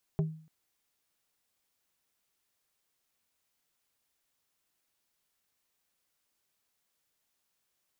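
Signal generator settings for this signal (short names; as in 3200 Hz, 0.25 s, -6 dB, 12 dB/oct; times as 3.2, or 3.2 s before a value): wood hit plate, length 0.29 s, lowest mode 158 Hz, decay 0.47 s, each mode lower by 7 dB, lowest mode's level -23 dB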